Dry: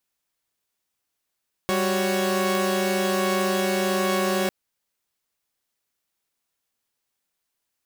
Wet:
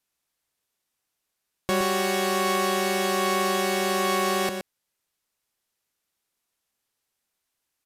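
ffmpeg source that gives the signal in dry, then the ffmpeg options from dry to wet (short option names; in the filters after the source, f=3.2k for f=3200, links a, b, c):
-f lavfi -i "aevalsrc='0.0708*((2*mod(196*t,1)-1)+(2*mod(369.99*t,1)-1)+(2*mod(554.37*t,1)-1))':d=2.8:s=44100"
-af "aecho=1:1:120:0.398,aresample=32000,aresample=44100"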